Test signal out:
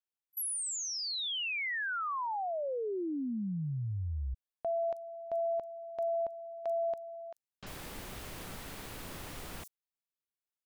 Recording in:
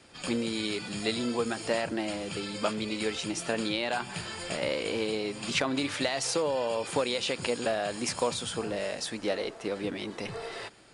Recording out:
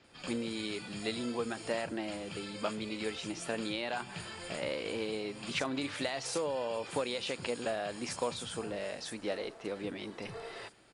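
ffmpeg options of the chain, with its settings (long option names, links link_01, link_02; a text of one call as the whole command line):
ffmpeg -i in.wav -filter_complex "[0:a]acrossover=split=6000[link_01][link_02];[link_02]adelay=40[link_03];[link_01][link_03]amix=inputs=2:normalize=0,volume=-5.5dB" out.wav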